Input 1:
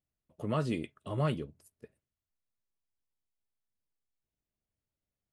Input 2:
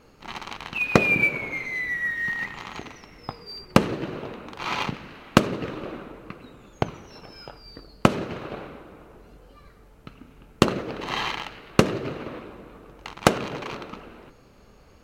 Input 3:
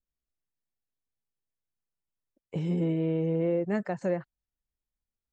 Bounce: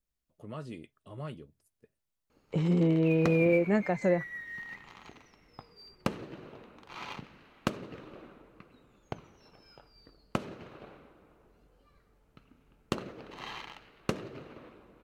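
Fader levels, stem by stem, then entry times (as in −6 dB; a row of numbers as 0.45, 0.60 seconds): −10.0, −14.5, +2.5 decibels; 0.00, 2.30, 0.00 seconds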